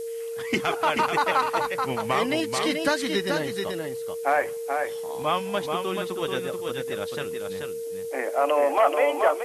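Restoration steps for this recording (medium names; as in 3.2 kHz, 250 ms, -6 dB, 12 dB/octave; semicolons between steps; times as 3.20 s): band-stop 460 Hz, Q 30; noise print and reduce 30 dB; inverse comb 433 ms -5 dB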